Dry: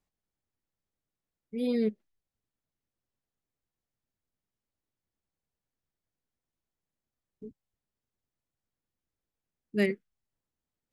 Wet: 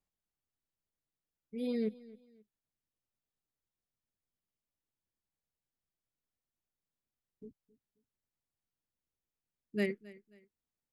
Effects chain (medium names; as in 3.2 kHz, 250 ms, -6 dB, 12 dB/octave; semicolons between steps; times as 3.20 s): feedback delay 267 ms, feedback 32%, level -20.5 dB; trim -6 dB